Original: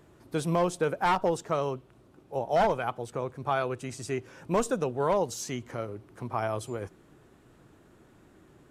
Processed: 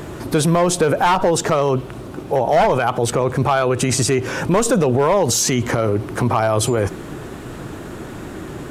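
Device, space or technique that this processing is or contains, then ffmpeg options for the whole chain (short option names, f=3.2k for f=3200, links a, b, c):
loud club master: -af "acompressor=threshold=-29dB:ratio=2,asoftclip=type=hard:threshold=-24dB,alimiter=level_in=34dB:limit=-1dB:release=50:level=0:latency=1,volume=-8dB"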